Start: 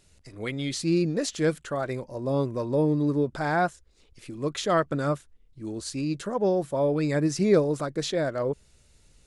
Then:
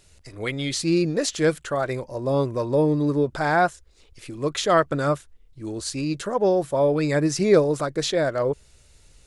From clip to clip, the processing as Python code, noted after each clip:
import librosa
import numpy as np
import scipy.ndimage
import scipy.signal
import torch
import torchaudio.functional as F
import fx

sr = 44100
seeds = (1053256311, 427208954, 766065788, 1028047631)

y = fx.peak_eq(x, sr, hz=210.0, db=-5.5, octaves=1.2)
y = F.gain(torch.from_numpy(y), 5.5).numpy()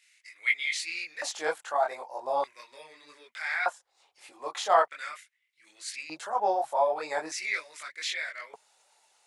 y = fx.chorus_voices(x, sr, voices=6, hz=1.4, base_ms=22, depth_ms=3.0, mix_pct=50)
y = fx.filter_lfo_highpass(y, sr, shape='square', hz=0.41, low_hz=810.0, high_hz=2100.0, q=5.5)
y = F.gain(torch.from_numpy(y), -4.5).numpy()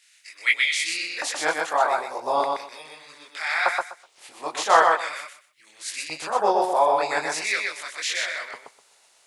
y = fx.spec_clip(x, sr, under_db=12)
y = fx.echo_feedback(y, sr, ms=125, feedback_pct=19, wet_db=-3.5)
y = F.gain(torch.from_numpy(y), 5.5).numpy()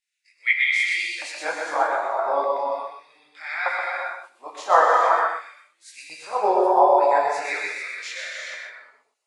y = fx.rev_gated(x, sr, seeds[0], gate_ms=480, shape='flat', drr_db=-2.0)
y = fx.spectral_expand(y, sr, expansion=1.5)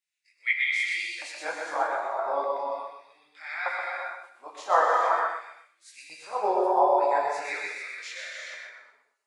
y = x + 10.0 ** (-21.0 / 20.0) * np.pad(x, (int(255 * sr / 1000.0), 0))[:len(x)]
y = F.gain(torch.from_numpy(y), -5.5).numpy()